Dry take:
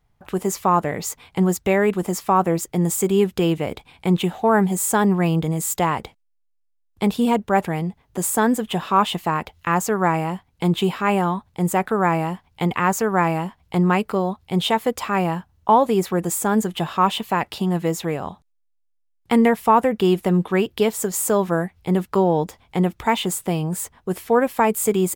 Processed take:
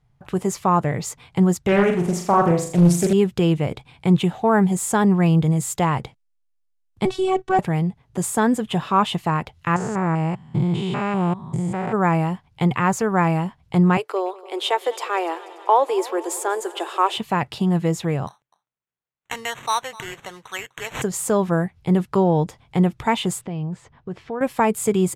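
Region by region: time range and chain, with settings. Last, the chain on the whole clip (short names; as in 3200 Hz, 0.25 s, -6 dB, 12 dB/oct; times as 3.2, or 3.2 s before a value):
1.68–3.13 flutter echo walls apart 6.9 m, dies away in 0.48 s + Doppler distortion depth 0.63 ms
7.05–7.59 LPF 8900 Hz 24 dB/oct + robotiser 378 Hz + sample leveller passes 1
9.76–11.94 stepped spectrum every 0.2 s + polynomial smoothing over 9 samples
13.97–17.17 steep high-pass 320 Hz 72 dB/oct + multi-head echo 97 ms, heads second and third, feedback 67%, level -20.5 dB
18.27–21.02 HPF 1200 Hz + echo 0.252 s -20.5 dB + sample-rate reducer 4900 Hz
23.41–24.41 compressor 2:1, threshold -32 dBFS + air absorption 170 m
whole clip: Bessel low-pass 9900 Hz, order 4; bell 130 Hz +12.5 dB 0.57 oct; gain -1 dB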